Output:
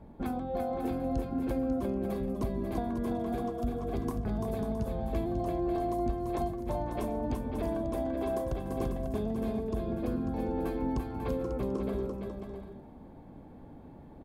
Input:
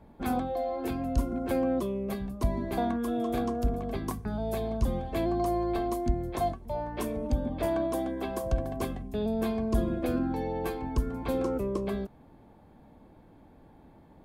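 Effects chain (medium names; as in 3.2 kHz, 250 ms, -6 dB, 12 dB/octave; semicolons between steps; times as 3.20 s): tilt shelf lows +4 dB; compression, threshold -31 dBFS, peak gain reduction 14 dB; on a send: bouncing-ball echo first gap 340 ms, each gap 0.6×, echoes 5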